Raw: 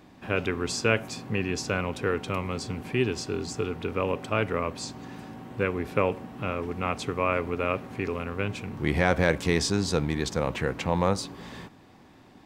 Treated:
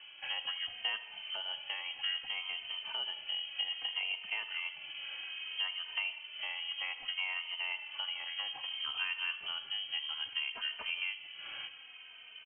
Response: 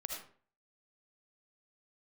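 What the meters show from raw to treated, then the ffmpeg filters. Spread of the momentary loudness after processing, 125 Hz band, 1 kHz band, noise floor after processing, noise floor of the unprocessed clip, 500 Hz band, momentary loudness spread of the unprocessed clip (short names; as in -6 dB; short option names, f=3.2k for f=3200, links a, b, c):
6 LU, under -40 dB, -17.0 dB, -53 dBFS, -53 dBFS, -32.0 dB, 9 LU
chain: -filter_complex "[0:a]equalizer=f=660:w=0.55:g=7,acompressor=threshold=-36dB:ratio=3,asplit=2[a][b];[1:a]atrim=start_sample=2205,adelay=80[c];[b][c]afir=irnorm=-1:irlink=0,volume=-12dB[d];[a][d]amix=inputs=2:normalize=0,lowpass=f=2.8k:t=q:w=0.5098,lowpass=f=2.8k:t=q:w=0.6013,lowpass=f=2.8k:t=q:w=0.9,lowpass=f=2.8k:t=q:w=2.563,afreqshift=-3300,asplit=2[e][f];[f]adelay=3,afreqshift=-0.62[g];[e][g]amix=inputs=2:normalize=1"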